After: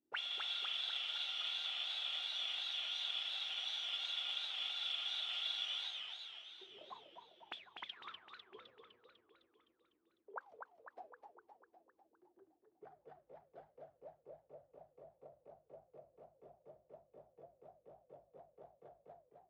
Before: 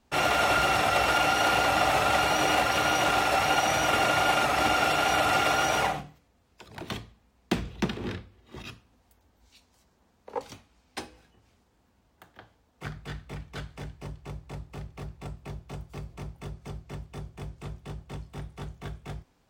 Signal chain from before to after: auto-wah 320–3400 Hz, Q 22, up, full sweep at -24 dBFS; warbling echo 0.253 s, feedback 61%, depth 198 cents, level -5.5 dB; gain +2 dB

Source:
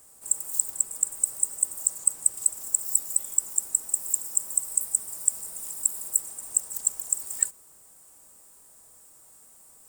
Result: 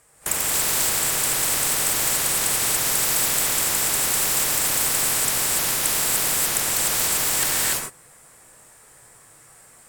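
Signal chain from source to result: LPF 11000 Hz 12 dB/oct; gate -40 dBFS, range -26 dB; graphic EQ 125/250/500/2000/8000 Hz +6/-4/+3/+9/-5 dB; non-linear reverb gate 0.31 s rising, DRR -8 dB; spectral compressor 4:1; gain +2 dB

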